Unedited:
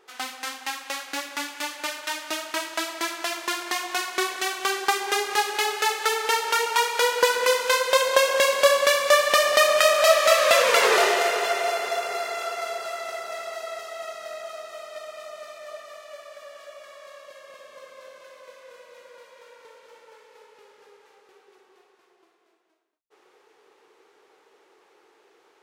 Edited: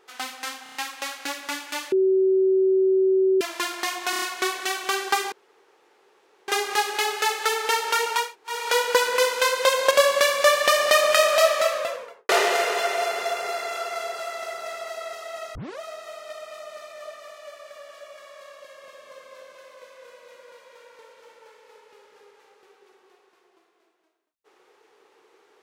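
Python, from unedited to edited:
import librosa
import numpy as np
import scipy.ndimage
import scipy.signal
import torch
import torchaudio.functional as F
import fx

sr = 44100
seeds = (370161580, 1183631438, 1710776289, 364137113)

y = fx.studio_fade_out(x, sr, start_s=9.93, length_s=1.02)
y = fx.edit(y, sr, fx.stutter(start_s=0.63, slice_s=0.03, count=5),
    fx.bleep(start_s=1.8, length_s=1.49, hz=380.0, db=-16.0),
    fx.stutter(start_s=3.98, slice_s=0.03, count=5),
    fx.insert_room_tone(at_s=5.08, length_s=1.16),
    fx.insert_room_tone(at_s=6.84, length_s=0.32, crossfade_s=0.24),
    fx.cut(start_s=8.19, length_s=0.38),
    fx.tape_start(start_s=14.21, length_s=0.25), tone=tone)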